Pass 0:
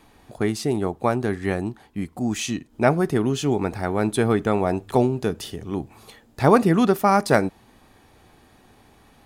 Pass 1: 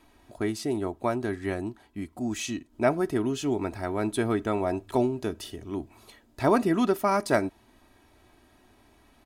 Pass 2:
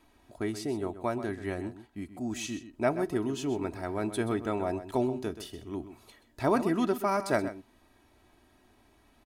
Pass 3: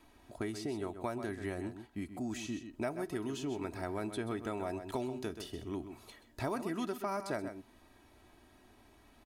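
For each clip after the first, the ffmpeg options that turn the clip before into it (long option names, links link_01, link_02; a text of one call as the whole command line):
ffmpeg -i in.wav -af "aecho=1:1:3.1:0.49,volume=-6.5dB" out.wav
ffmpeg -i in.wav -filter_complex "[0:a]asplit=2[link_01][link_02];[link_02]adelay=128.3,volume=-12dB,highshelf=frequency=4000:gain=-2.89[link_03];[link_01][link_03]amix=inputs=2:normalize=0,volume=-4dB" out.wav
ffmpeg -i in.wav -filter_complex "[0:a]acrossover=split=1300|6200[link_01][link_02][link_03];[link_01]acompressor=threshold=-37dB:ratio=4[link_04];[link_02]acompressor=threshold=-48dB:ratio=4[link_05];[link_03]acompressor=threshold=-57dB:ratio=4[link_06];[link_04][link_05][link_06]amix=inputs=3:normalize=0,volume=1dB" out.wav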